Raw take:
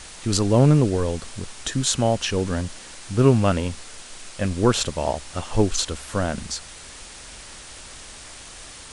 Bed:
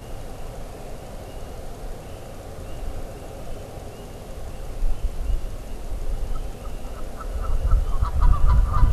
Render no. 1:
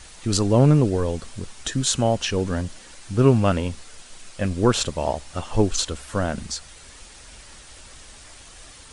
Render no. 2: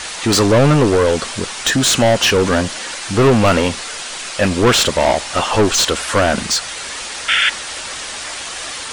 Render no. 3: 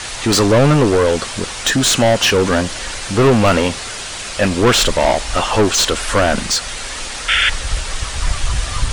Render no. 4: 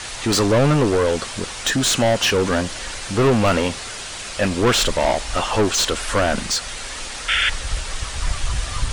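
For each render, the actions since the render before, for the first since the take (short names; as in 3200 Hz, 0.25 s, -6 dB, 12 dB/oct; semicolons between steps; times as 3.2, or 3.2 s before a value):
denoiser 6 dB, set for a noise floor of -41 dBFS
overdrive pedal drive 28 dB, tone 4900 Hz, clips at -3.5 dBFS; 7.28–7.5 painted sound noise 1300–3600 Hz -14 dBFS
add bed -2 dB
gain -4.5 dB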